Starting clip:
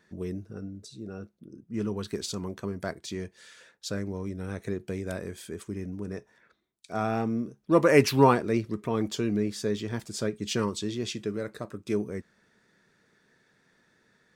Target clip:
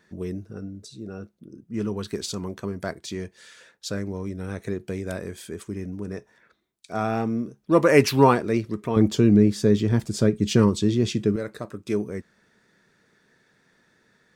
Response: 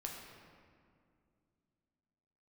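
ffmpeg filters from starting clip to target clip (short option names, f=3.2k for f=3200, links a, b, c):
-filter_complex "[0:a]asettb=1/sr,asplit=3[a][b][c];[a]atrim=end=8.964[d];[b]atrim=start=8.96:end=11.36,asetpts=PTS-STARTPTS,afade=t=in:d=0.004:c=qsin,afade=t=out:st=2.396:d=0.004:c=qsin,lowshelf=f=400:g=11.5[e];[c]atrim=start=11.356[f];[d][e]acrossfade=d=0.004:c1=hsin:c2=qsin[g];[g][f]acrossfade=d=0.004:c1=qsin:c2=hsin,volume=3dB"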